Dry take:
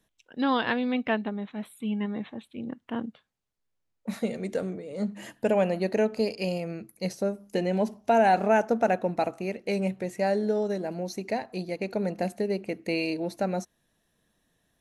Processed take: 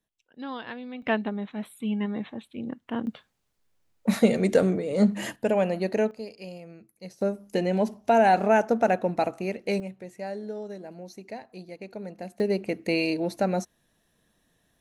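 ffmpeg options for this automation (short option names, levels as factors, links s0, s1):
-af "asetnsamples=n=441:p=0,asendcmd='1.02 volume volume 1.5dB;3.07 volume volume 9.5dB;5.36 volume volume 0dB;6.11 volume volume -11dB;7.21 volume volume 1.5dB;9.8 volume volume -9dB;12.4 volume volume 3dB',volume=0.282"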